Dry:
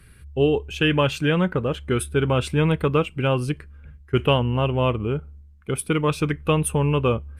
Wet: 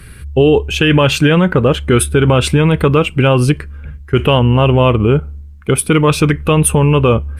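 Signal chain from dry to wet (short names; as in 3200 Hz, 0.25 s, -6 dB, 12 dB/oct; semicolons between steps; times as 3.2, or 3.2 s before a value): maximiser +15.5 dB; gain -1 dB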